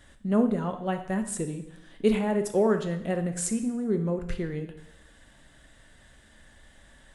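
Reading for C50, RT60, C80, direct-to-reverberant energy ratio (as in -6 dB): 10.0 dB, 0.85 s, 13.0 dB, 6.5 dB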